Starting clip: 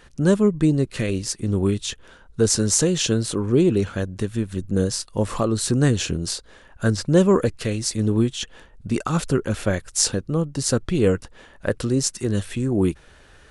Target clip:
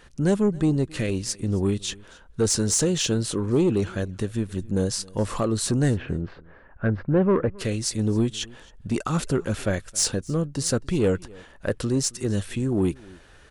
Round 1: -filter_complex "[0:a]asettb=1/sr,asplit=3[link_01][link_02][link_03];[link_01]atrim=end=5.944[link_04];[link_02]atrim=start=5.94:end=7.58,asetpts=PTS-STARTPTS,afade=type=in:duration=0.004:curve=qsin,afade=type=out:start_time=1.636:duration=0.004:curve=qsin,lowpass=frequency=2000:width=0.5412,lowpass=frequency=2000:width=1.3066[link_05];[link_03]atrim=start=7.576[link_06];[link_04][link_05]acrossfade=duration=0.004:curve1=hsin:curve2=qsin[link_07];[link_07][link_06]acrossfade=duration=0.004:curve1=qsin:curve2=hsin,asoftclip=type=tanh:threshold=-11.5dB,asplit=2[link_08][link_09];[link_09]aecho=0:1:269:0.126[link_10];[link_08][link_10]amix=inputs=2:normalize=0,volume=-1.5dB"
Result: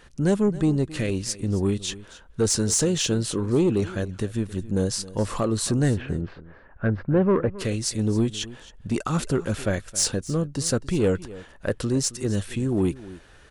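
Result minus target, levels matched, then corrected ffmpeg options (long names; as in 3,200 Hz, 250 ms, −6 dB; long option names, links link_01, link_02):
echo-to-direct +6 dB
-filter_complex "[0:a]asettb=1/sr,asplit=3[link_01][link_02][link_03];[link_01]atrim=end=5.944[link_04];[link_02]atrim=start=5.94:end=7.58,asetpts=PTS-STARTPTS,afade=type=in:duration=0.004:curve=qsin,afade=type=out:start_time=1.636:duration=0.004:curve=qsin,lowpass=frequency=2000:width=0.5412,lowpass=frequency=2000:width=1.3066[link_05];[link_03]atrim=start=7.576[link_06];[link_04][link_05]acrossfade=duration=0.004:curve1=hsin:curve2=qsin[link_07];[link_07][link_06]acrossfade=duration=0.004:curve1=qsin:curve2=hsin,asoftclip=type=tanh:threshold=-11.5dB,asplit=2[link_08][link_09];[link_09]aecho=0:1:269:0.0631[link_10];[link_08][link_10]amix=inputs=2:normalize=0,volume=-1.5dB"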